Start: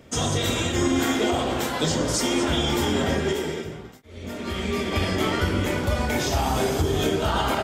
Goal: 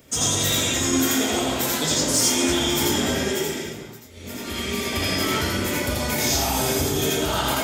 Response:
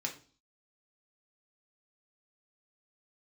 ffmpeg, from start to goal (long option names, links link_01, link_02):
-filter_complex "[0:a]aemphasis=mode=production:type=75kf,asoftclip=type=tanh:threshold=-8.5dB,asplit=2[link_01][link_02];[1:a]atrim=start_sample=2205,adelay=84[link_03];[link_02][link_03]afir=irnorm=-1:irlink=0,volume=0dB[link_04];[link_01][link_04]amix=inputs=2:normalize=0,volume=-4.5dB"